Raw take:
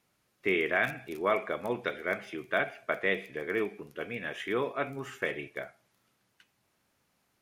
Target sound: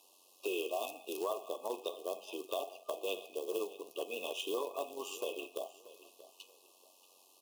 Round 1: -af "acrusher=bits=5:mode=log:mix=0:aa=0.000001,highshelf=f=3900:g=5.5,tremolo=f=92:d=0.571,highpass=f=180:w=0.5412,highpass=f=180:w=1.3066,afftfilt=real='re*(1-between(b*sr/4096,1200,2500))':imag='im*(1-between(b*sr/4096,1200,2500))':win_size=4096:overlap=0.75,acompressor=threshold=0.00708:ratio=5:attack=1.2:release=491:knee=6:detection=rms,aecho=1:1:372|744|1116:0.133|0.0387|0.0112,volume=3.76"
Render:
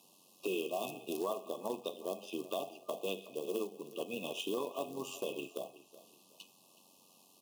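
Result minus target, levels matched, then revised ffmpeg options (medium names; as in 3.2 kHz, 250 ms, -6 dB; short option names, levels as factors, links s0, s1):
echo 260 ms early; 250 Hz band +4.5 dB
-af "acrusher=bits=5:mode=log:mix=0:aa=0.000001,highshelf=f=3900:g=5.5,tremolo=f=92:d=0.571,highpass=f=360:w=0.5412,highpass=f=360:w=1.3066,afftfilt=real='re*(1-between(b*sr/4096,1200,2500))':imag='im*(1-between(b*sr/4096,1200,2500))':win_size=4096:overlap=0.75,acompressor=threshold=0.00708:ratio=5:attack=1.2:release=491:knee=6:detection=rms,aecho=1:1:632|1264|1896:0.133|0.0387|0.0112,volume=3.76"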